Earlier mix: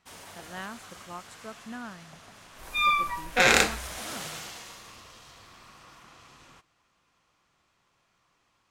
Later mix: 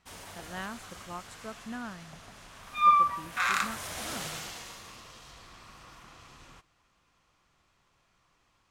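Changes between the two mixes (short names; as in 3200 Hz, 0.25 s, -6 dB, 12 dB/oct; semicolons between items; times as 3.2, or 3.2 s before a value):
second sound: add ladder high-pass 1100 Hz, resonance 80%; master: add low shelf 71 Hz +11.5 dB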